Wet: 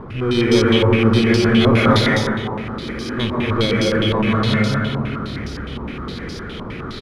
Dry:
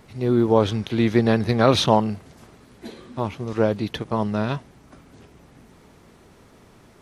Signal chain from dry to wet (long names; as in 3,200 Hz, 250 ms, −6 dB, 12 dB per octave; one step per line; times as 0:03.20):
samples in bit-reversed order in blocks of 16 samples
single-tap delay 227 ms −10 dB
0:02.01–0:02.89: downward compressor, threshold −41 dBFS, peak gain reduction 19 dB
power curve on the samples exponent 0.5
flat-topped bell 770 Hz −9 dB 1 octave
dense smooth reverb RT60 2.1 s, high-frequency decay 0.5×, pre-delay 115 ms, DRR −3 dB
low-pass on a step sequencer 9.7 Hz 990–5,100 Hz
level −7 dB